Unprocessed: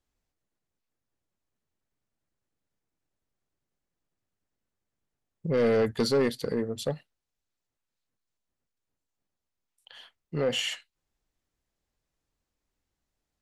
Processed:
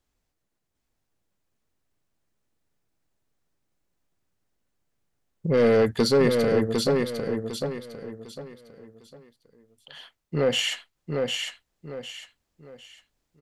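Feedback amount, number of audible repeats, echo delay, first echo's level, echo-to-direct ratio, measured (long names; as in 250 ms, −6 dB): 32%, 4, 753 ms, −4.0 dB, −3.5 dB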